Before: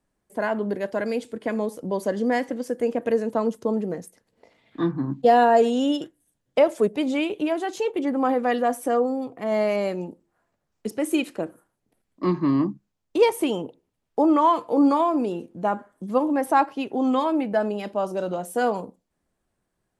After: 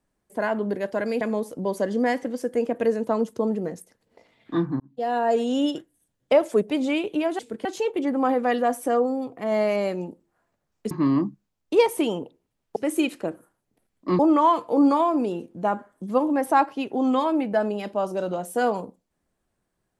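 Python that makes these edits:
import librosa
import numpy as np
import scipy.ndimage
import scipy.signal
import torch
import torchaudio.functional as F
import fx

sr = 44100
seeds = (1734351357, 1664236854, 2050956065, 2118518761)

y = fx.edit(x, sr, fx.move(start_s=1.21, length_s=0.26, to_s=7.65),
    fx.fade_in_span(start_s=5.06, length_s=0.86),
    fx.move(start_s=10.91, length_s=1.43, to_s=14.19), tone=tone)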